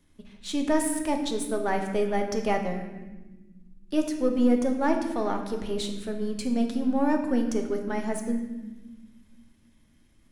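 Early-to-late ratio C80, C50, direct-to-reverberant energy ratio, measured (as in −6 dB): 8.0 dB, 6.5 dB, 3.0 dB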